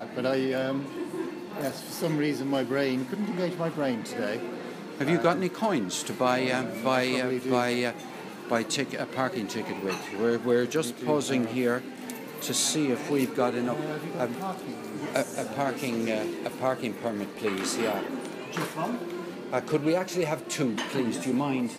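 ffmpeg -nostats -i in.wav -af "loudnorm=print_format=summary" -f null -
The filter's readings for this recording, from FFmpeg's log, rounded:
Input Integrated:    -29.0 LUFS
Input True Peak:      -8.9 dBTP
Input LRA:             2.7 LU
Input Threshold:     -39.0 LUFS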